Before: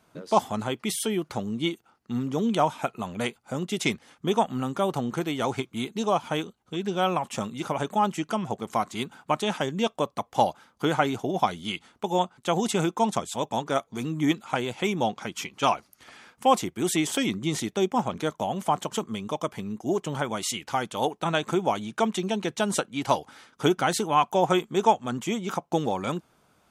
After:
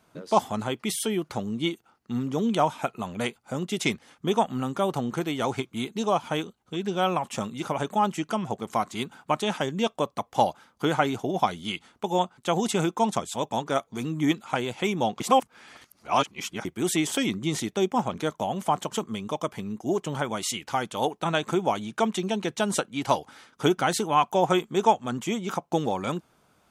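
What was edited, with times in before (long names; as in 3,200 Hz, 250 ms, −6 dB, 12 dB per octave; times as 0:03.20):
0:15.20–0:16.65: reverse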